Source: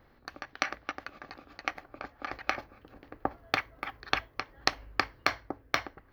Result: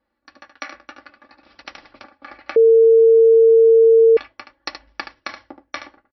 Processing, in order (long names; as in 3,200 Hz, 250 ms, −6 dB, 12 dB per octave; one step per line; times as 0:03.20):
0:04.87–0:05.43: one scale factor per block 3 bits
noise gate −48 dBFS, range −10 dB
high-pass filter 130 Hz 6 dB per octave
comb filter 3.5 ms, depth 82%
flanger 0.62 Hz, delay 4 ms, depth 9.1 ms, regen −48%
linear-phase brick-wall low-pass 5,800 Hz
single-tap delay 74 ms −9 dB
0:01.43–0:02.04: every bin compressed towards the loudest bin 2 to 1
0:02.56–0:04.17: beep over 453 Hz −7.5 dBFS